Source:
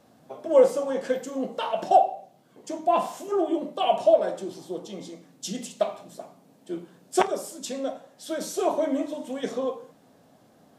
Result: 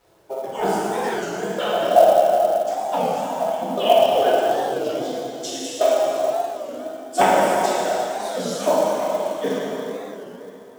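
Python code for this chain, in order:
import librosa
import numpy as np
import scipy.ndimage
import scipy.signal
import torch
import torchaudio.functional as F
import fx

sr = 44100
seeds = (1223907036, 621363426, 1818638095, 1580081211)

p1 = fx.hpss_only(x, sr, part='percussive')
p2 = fx.rider(p1, sr, range_db=3, speed_s=2.0)
p3 = fx.dynamic_eq(p2, sr, hz=1100.0, q=4.9, threshold_db=-51.0, ratio=4.0, max_db=-7)
p4 = p3 + fx.echo_single(p3, sr, ms=75, db=-21.5, dry=0)
p5 = fx.noise_reduce_blind(p4, sr, reduce_db=6)
p6 = fx.high_shelf(p5, sr, hz=3700.0, db=-10.0)
p7 = fx.rev_plate(p6, sr, seeds[0], rt60_s=3.5, hf_ratio=0.75, predelay_ms=0, drr_db=-9.0)
p8 = fx.quant_companded(p7, sr, bits=6)
p9 = fx.record_warp(p8, sr, rpm=33.33, depth_cents=160.0)
y = p9 * librosa.db_to_amplitude(5.0)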